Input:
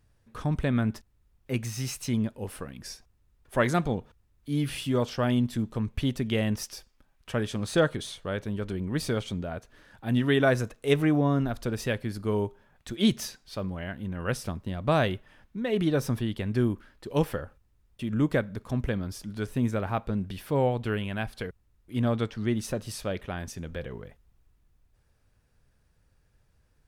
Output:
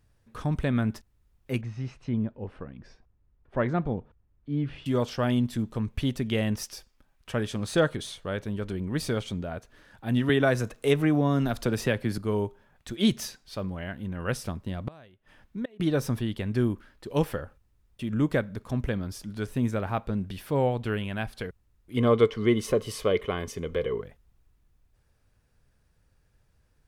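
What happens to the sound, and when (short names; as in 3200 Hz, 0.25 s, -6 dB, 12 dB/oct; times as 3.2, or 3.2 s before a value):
1.61–4.86 tape spacing loss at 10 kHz 38 dB
10.29–12.18 three-band squash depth 70%
14.85–15.8 flipped gate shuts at -21 dBFS, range -27 dB
21.97–24.01 small resonant body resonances 440/1100/2100/3000 Hz, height 15 dB, ringing for 30 ms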